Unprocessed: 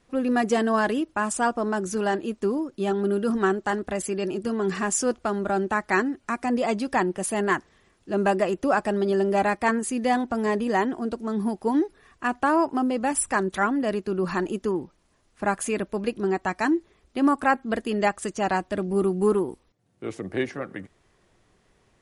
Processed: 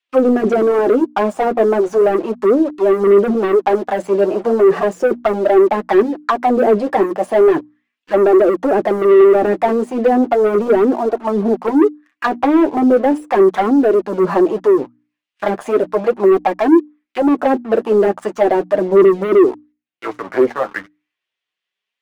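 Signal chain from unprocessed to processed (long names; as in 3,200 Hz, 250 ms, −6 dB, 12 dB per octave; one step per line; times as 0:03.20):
leveller curve on the samples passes 3
envelope filter 380–3,000 Hz, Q 2.7, down, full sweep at −12.5 dBFS
leveller curve on the samples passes 2
mains-hum notches 60/120/180/240/300 Hz
flanger 0.36 Hz, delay 2.6 ms, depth 7.8 ms, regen −18%
level +7.5 dB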